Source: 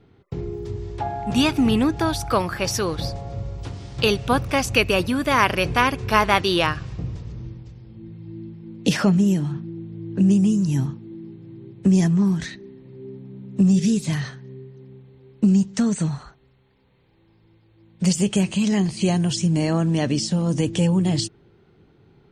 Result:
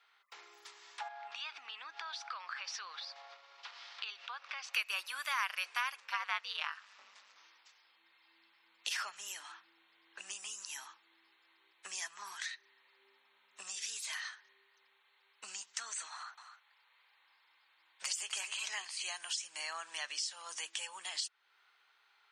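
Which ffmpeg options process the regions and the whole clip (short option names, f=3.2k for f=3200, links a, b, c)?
-filter_complex "[0:a]asettb=1/sr,asplit=3[a][b][c];[a]atrim=end=1.084[d];[b]atrim=start=1.08:end=4.74,asetpts=PTS-STARTPTS,afade=t=in:d=0.004:c=qsin,afade=t=out:st=3.656:d=0.004:c=qsin,lowpass=f=4.8k:w=0.5412,lowpass=f=4.8k:w=1.3066,acompressor=threshold=-29dB:ratio=6:attack=3.2:release=140:knee=1:detection=peak[e];[c]atrim=start=4.736[f];[d][e]acrossfade=d=0.004:c1=hsin:c2=qsin[g];[g][f]acrossfade=d=0.004:c1=qsin:c2=hsin,asettb=1/sr,asplit=3[h][i][j];[h]atrim=end=6.004[k];[i]atrim=start=6:end=7.36,asetpts=PTS-STARTPTS,afade=t=in:d=0.004:c=qsin,afade=t=out:st=1.356:d=0.004:c=qsin,acrossover=split=6800[l][m];[m]acompressor=threshold=-53dB:ratio=4:attack=1:release=60[n];[l][n]amix=inputs=2:normalize=0,highshelf=f=6.3k:g=-7,aeval=exprs='val(0)*sin(2*PI*100*n/s)':c=same[o];[j]atrim=start=7.356[p];[k][o]acrossfade=d=0.004:c1=hsin:c2=qsin[q];[q][p]acrossfade=d=0.004:c1=qsin:c2=hsin,asettb=1/sr,asplit=3[r][s][t];[r]atrim=end=16.124[u];[s]atrim=start=16.12:end=18.85,asetpts=PTS-STARTPTS,afade=t=in:d=0.004:c=qsin,afade=t=out:st=2.726:d=0.004:c=qsin,equalizer=f=730:w=0.4:g=3.5,aecho=1:1:254:0.282,atrim=end_sample=120393[v];[t]atrim=start=18.846[w];[u][v]acrossfade=d=0.004:c1=hsin:c2=qsin[x];[x][w]acrossfade=d=0.004:c1=qsin:c2=hsin,highpass=f=1.1k:w=0.5412,highpass=f=1.1k:w=1.3066,acompressor=threshold=-43dB:ratio=2"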